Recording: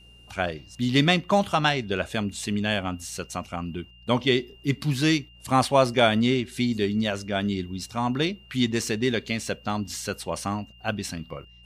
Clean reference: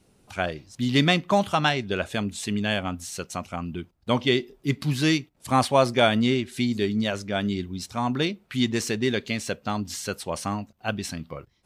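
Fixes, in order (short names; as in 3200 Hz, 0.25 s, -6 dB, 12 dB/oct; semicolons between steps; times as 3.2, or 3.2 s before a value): de-hum 59.4 Hz, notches 3; notch 2800 Hz, Q 30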